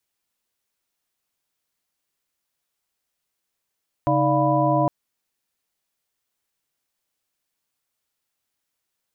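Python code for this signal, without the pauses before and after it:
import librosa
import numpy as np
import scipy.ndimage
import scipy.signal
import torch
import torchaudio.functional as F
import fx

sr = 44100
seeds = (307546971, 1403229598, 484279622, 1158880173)

y = fx.chord(sr, length_s=0.81, notes=(49, 63, 74, 77, 83), wave='sine', level_db=-23.0)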